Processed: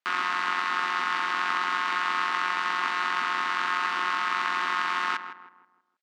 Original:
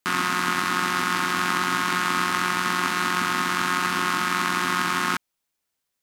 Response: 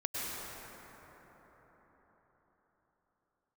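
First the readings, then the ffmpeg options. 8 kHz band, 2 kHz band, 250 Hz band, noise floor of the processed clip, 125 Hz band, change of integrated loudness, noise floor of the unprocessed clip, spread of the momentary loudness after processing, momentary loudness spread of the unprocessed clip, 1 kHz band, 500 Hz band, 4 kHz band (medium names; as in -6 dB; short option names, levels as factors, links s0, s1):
-15.0 dB, -3.0 dB, -15.5 dB, -67 dBFS, under -20 dB, -3.5 dB, -80 dBFS, 1 LU, 1 LU, -2.5 dB, -9.5 dB, -5.5 dB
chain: -filter_complex "[0:a]highpass=560,lowpass=3600,asplit=2[s0][s1];[s1]adelay=160,lowpass=f=1600:p=1,volume=0.355,asplit=2[s2][s3];[s3]adelay=160,lowpass=f=1600:p=1,volume=0.43,asplit=2[s4][s5];[s5]adelay=160,lowpass=f=1600:p=1,volume=0.43,asplit=2[s6][s7];[s7]adelay=160,lowpass=f=1600:p=1,volume=0.43,asplit=2[s8][s9];[s9]adelay=160,lowpass=f=1600:p=1,volume=0.43[s10];[s2][s4][s6][s8][s10]amix=inputs=5:normalize=0[s11];[s0][s11]amix=inputs=2:normalize=0,volume=0.75"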